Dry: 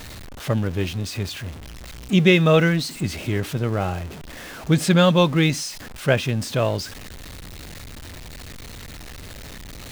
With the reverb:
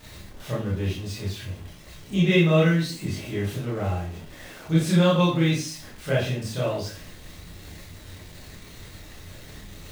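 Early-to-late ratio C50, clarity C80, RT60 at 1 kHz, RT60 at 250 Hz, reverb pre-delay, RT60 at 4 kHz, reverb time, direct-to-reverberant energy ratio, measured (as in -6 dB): 3.5 dB, 8.5 dB, 0.40 s, 0.50 s, 22 ms, 0.40 s, 0.45 s, -8.0 dB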